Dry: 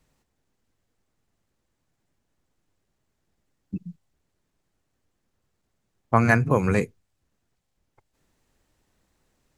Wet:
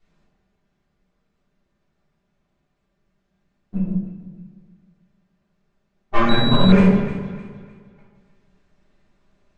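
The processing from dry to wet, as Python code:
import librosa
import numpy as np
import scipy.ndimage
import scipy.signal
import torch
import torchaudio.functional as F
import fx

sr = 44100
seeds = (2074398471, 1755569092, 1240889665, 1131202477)

y = fx.lower_of_two(x, sr, delay_ms=5.0)
y = fx.air_absorb(y, sr, metres=120.0)
y = fx.echo_alternate(y, sr, ms=153, hz=980.0, feedback_pct=59, wet_db=-9)
y = fx.room_shoebox(y, sr, seeds[0], volume_m3=370.0, walls='mixed', distance_m=3.4)
y = fx.pwm(y, sr, carrier_hz=3900.0, at=(6.29, 6.72))
y = y * librosa.db_to_amplitude(-2.5)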